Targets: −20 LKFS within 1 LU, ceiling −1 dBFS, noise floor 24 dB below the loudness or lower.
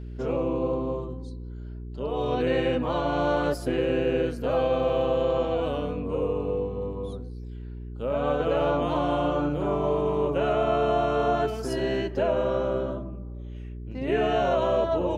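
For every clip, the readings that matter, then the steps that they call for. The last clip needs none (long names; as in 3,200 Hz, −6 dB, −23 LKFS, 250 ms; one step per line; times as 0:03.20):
mains hum 60 Hz; hum harmonics up to 420 Hz; level of the hum −35 dBFS; integrated loudness −26.0 LKFS; sample peak −14.0 dBFS; target loudness −20.0 LKFS
→ hum removal 60 Hz, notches 7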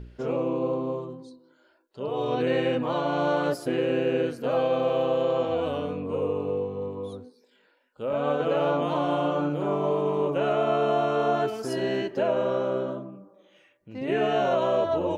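mains hum none found; integrated loudness −26.5 LKFS; sample peak −14.5 dBFS; target loudness −20.0 LKFS
→ level +6.5 dB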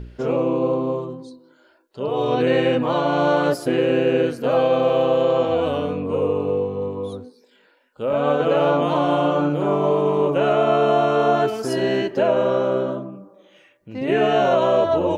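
integrated loudness −20.0 LKFS; sample peak −8.0 dBFS; background noise floor −57 dBFS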